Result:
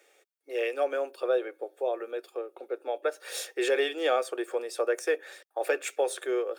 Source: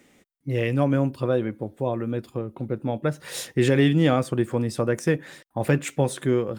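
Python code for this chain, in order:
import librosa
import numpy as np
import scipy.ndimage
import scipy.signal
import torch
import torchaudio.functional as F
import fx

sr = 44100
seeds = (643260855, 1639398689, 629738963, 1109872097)

y = scipy.signal.sosfilt(scipy.signal.butter(8, 390.0, 'highpass', fs=sr, output='sos'), x)
y = fx.notch_comb(y, sr, f0_hz=1000.0)
y = y * 10.0 ** (-1.5 / 20.0)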